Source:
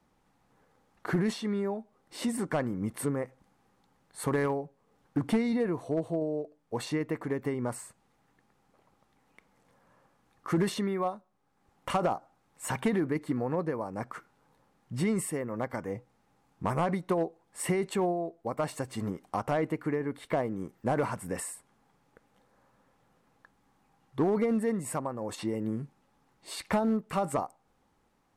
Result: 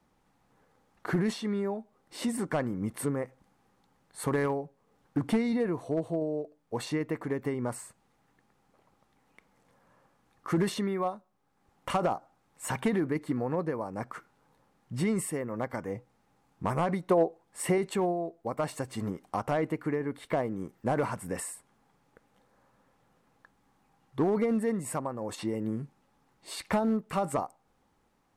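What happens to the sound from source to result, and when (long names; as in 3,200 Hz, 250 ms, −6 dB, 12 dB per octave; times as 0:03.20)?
0:17.07–0:17.78: dynamic equaliser 590 Hz, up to +7 dB, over −41 dBFS, Q 1.1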